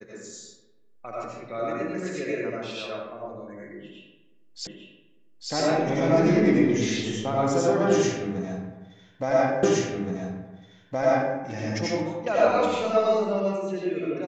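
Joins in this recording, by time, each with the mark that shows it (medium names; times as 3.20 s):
4.67 s: repeat of the last 0.85 s
9.63 s: repeat of the last 1.72 s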